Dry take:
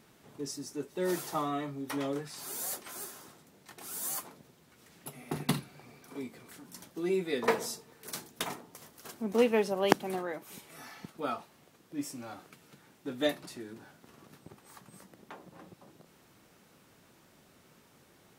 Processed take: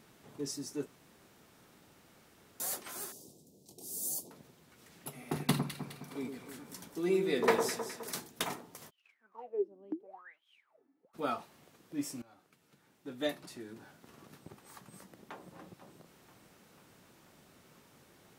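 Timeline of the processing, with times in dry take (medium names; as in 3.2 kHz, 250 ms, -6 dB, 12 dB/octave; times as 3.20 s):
0.86–2.60 s: room tone
3.12–4.31 s: Chebyshev band-stop 470–5400 Hz
5.41–8.20 s: echo whose repeats swap between lows and highs 104 ms, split 1.4 kHz, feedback 67%, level -5.5 dB
8.89–11.13 s: wah-wah 0.37 Hz -> 1.4 Hz 270–3300 Hz, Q 21
12.22–14.19 s: fade in, from -19.5 dB
14.87–15.57 s: echo throw 490 ms, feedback 75%, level -15.5 dB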